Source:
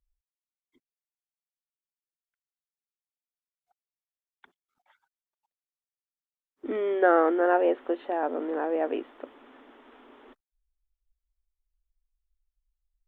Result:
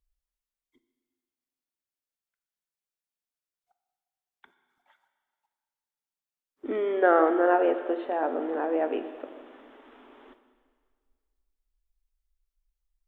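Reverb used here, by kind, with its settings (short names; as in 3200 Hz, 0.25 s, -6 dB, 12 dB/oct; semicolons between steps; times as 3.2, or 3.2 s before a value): plate-style reverb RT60 1.8 s, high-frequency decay 0.95×, DRR 8.5 dB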